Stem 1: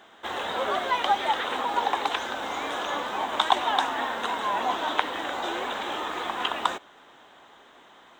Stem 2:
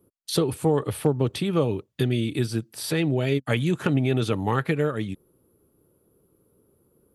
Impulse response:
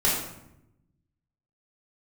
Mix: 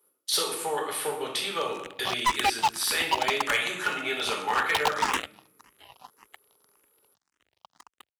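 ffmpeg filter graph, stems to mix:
-filter_complex "[0:a]aecho=1:1:1:0.99,acrusher=bits=2:mix=0:aa=0.5,asplit=2[link_01][link_02];[link_02]afreqshift=1.8[link_03];[link_01][link_03]amix=inputs=2:normalize=1,adelay=1350,volume=1dB[link_04];[1:a]highpass=1100,volume=0.5dB,asplit=3[link_05][link_06][link_07];[link_06]volume=-9.5dB[link_08];[link_07]apad=whole_len=421116[link_09];[link_04][link_09]sidechaingate=range=-24dB:threshold=-60dB:ratio=16:detection=peak[link_10];[2:a]atrim=start_sample=2205[link_11];[link_08][link_11]afir=irnorm=-1:irlink=0[link_12];[link_10][link_05][link_12]amix=inputs=3:normalize=0,highpass=50,asoftclip=type=hard:threshold=-18dB"

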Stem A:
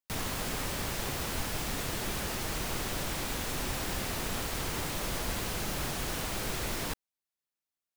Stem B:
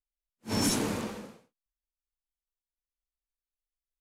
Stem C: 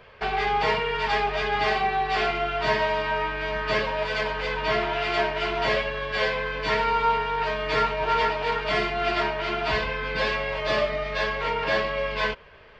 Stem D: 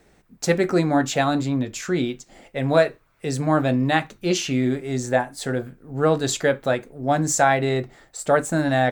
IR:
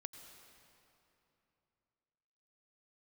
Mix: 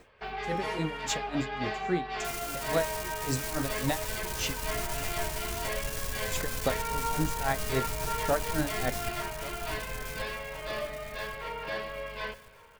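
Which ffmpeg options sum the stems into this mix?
-filter_complex "[0:a]asubboost=boost=9:cutoff=140,aeval=exprs='(tanh(11.2*val(0)+0.6)-tanh(0.6))/11.2':channel_layout=same,bass=frequency=250:gain=-5,treble=frequency=4000:gain=10,adelay=2150,volume=-7dB,asplit=2[link_01][link_02];[link_02]volume=-5dB[link_03];[1:a]alimiter=level_in=4dB:limit=-24dB:level=0:latency=1,volume=-4dB,volume=-15dB[link_04];[2:a]volume=-13.5dB,asplit=3[link_05][link_06][link_07];[link_06]volume=-4.5dB[link_08];[link_07]volume=-19.5dB[link_09];[3:a]acompressor=threshold=-24dB:ratio=6,aeval=exprs='val(0)*pow(10,-30*(0.5-0.5*cos(2*PI*3.6*n/s))/20)':channel_layout=same,volume=1dB,asplit=3[link_10][link_11][link_12];[link_10]atrim=end=4.59,asetpts=PTS-STARTPTS,afade=type=out:start_time=4.586:duration=0.004:curve=hsin[link_13];[link_11]atrim=start=4.59:end=6.23,asetpts=PTS-STARTPTS,volume=0[link_14];[link_12]atrim=start=6.23,asetpts=PTS-STARTPTS,afade=type=in:duration=0.004:curve=hsin[link_15];[link_13][link_14][link_15]concat=n=3:v=0:a=1,asplit=2[link_16][link_17];[link_17]volume=-18.5dB[link_18];[4:a]atrim=start_sample=2205[link_19];[link_08][link_19]afir=irnorm=-1:irlink=0[link_20];[link_03][link_09][link_18]amix=inputs=3:normalize=0,aecho=0:1:1132|2264|3396|4528|5660|6792:1|0.4|0.16|0.064|0.0256|0.0102[link_21];[link_01][link_04][link_05][link_16][link_20][link_21]amix=inputs=6:normalize=0"

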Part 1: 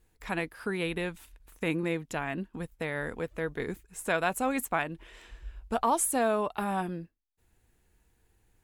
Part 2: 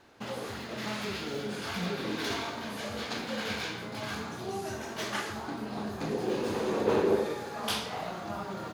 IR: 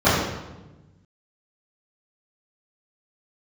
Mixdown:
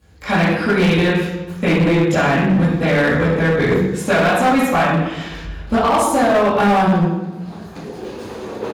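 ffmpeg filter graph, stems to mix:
-filter_complex "[0:a]acompressor=threshold=-29dB:ratio=10,equalizer=frequency=3900:width_type=o:width=2:gain=8.5,volume=-2.5dB,asplit=3[link_01][link_02][link_03];[link_02]volume=-3dB[link_04];[1:a]adelay=1750,volume=1dB[link_05];[link_03]apad=whole_len=462179[link_06];[link_05][link_06]sidechaincompress=threshold=-50dB:ratio=8:attack=37:release=594[link_07];[2:a]atrim=start_sample=2205[link_08];[link_04][link_08]afir=irnorm=-1:irlink=0[link_09];[link_01][link_07][link_09]amix=inputs=3:normalize=0,asoftclip=type=hard:threshold=-10.5dB"

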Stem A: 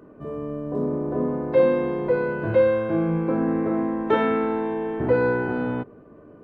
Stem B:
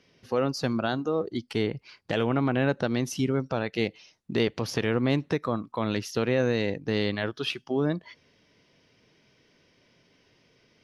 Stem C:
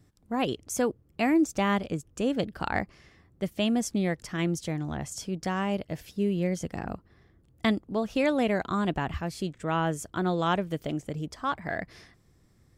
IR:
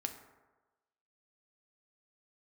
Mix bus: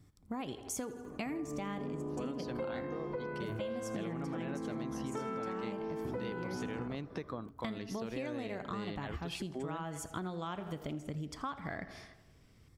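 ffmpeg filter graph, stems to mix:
-filter_complex "[0:a]adelay=1050,volume=-4.5dB,asplit=2[link_01][link_02];[link_02]volume=-8.5dB[link_03];[1:a]adelay=1850,volume=-9dB,asplit=2[link_04][link_05];[link_05]volume=-23dB[link_06];[2:a]volume=-5.5dB,asplit=3[link_07][link_08][link_09];[link_08]volume=-5.5dB[link_10];[link_09]volume=-16dB[link_11];[link_01][link_07]amix=inputs=2:normalize=0,aecho=1:1:0.9:0.43,acompressor=threshold=-33dB:ratio=6,volume=0dB[link_12];[3:a]atrim=start_sample=2205[link_13];[link_03][link_06][link_10]amix=inputs=3:normalize=0[link_14];[link_14][link_13]afir=irnorm=-1:irlink=0[link_15];[link_11]aecho=0:1:81|162|243|324|405|486|567|648:1|0.52|0.27|0.141|0.0731|0.038|0.0198|0.0103[link_16];[link_04][link_12][link_15][link_16]amix=inputs=4:normalize=0,acompressor=threshold=-36dB:ratio=6"

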